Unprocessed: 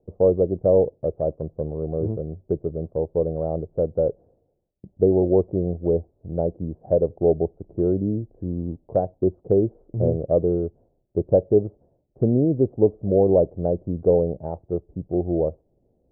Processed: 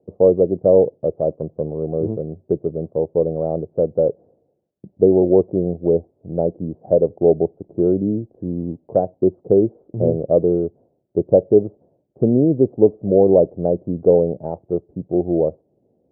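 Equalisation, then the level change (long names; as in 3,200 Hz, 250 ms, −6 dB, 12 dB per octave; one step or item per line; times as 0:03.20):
high-pass filter 150 Hz 12 dB per octave
low-pass filter 1,000 Hz 6 dB per octave
+5.5 dB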